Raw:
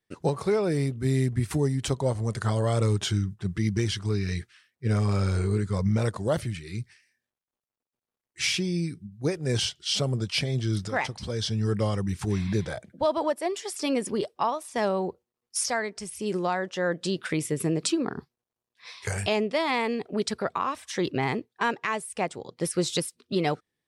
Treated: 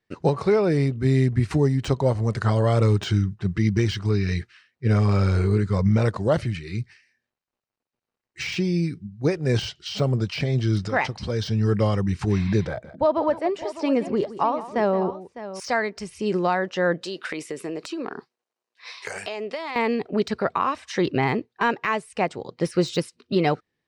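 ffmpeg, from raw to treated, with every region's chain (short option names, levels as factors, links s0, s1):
-filter_complex "[0:a]asettb=1/sr,asplit=3[s0][s1][s2];[s0]atrim=end=12.674[s3];[s1]atrim=start=12.67:end=15.6,asetpts=PTS-STARTPTS,afade=t=in:d=0.004:c=qsin,afade=t=out:st=2.926:d=0.004:c=qsin,highshelf=f=2600:g=-11,aecho=1:1:169|605:0.178|0.211,atrim=end_sample=129213[s4];[s2]atrim=start=15.596[s5];[s3][s4]acrossfade=d=0.004:c1=hsin:c2=qsin[s6];[s6][s5]acrossfade=d=0.004:c1=qsin:c2=hsin,asettb=1/sr,asplit=3[s7][s8][s9];[s7]atrim=end=17.024[s10];[s8]atrim=start=17.02:end=19.76,asetpts=PTS-STARTPTS,afade=t=in:d=0.004:c=qsin,afade=t=out:st=2.736:d=0.004:c=qsin,highpass=360,highshelf=f=9300:g=11,acompressor=threshold=0.0316:ratio=16:attack=3.2:release=140:knee=1:detection=peak[s11];[s9]atrim=start=19.756[s12];[s10][s11]acrossfade=d=0.004:c1=hsin:c2=qsin[s13];[s13][s12]acrossfade=d=0.004:c1=qsin:c2=hsin,lowpass=4800,deesser=0.9,bandreject=f=3400:w=12,volume=1.78"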